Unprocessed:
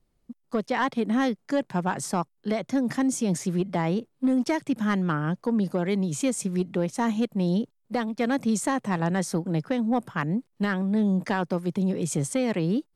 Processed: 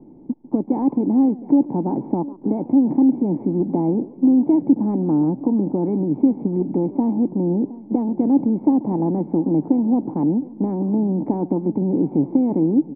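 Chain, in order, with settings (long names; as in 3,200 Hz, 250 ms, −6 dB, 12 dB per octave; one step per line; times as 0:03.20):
compressor on every frequency bin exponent 0.6
parametric band 1,700 Hz −6.5 dB 1.8 octaves
in parallel at +2 dB: downward compressor, threshold −30 dBFS, peak gain reduction 11.5 dB
on the sum: formant resonators in series u
on a send: single-tap delay 716 ms −19 dB
on the sum: dynamic equaliser 760 Hz, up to +3 dB, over −43 dBFS, Q 0.79
feedback echo with a swinging delay time 143 ms, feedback 32%, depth 217 cents, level −20.5 dB
level +8.5 dB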